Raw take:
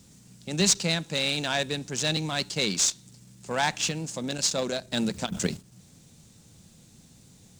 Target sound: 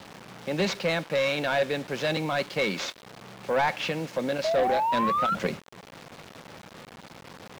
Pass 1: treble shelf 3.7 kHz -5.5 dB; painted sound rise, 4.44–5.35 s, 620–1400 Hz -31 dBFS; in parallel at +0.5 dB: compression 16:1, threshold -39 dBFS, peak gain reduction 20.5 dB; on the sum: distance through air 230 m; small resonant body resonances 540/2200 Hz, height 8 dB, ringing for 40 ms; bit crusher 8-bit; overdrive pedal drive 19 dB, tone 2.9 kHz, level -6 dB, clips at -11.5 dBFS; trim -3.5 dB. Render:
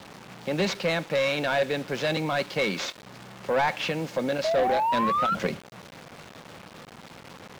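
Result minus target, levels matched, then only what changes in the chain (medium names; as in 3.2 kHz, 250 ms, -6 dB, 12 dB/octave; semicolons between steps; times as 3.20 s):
compression: peak gain reduction -11 dB
change: compression 16:1, threshold -51 dBFS, peak gain reduction 31.5 dB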